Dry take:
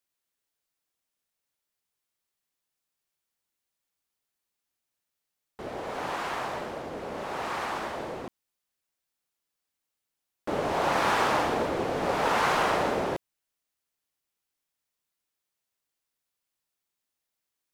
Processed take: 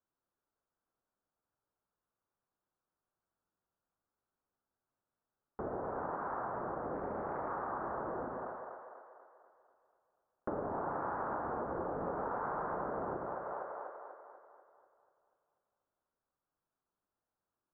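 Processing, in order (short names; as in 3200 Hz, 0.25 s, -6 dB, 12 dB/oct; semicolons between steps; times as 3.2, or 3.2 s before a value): steep low-pass 1500 Hz 48 dB/oct; on a send: split-band echo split 480 Hz, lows 91 ms, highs 0.244 s, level -6 dB; on the sum: compressor 6:1, threshold -38 dBFS, peak gain reduction 16.5 dB; 6.94–7.52 Doppler distortion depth 0.24 ms; gain +2 dB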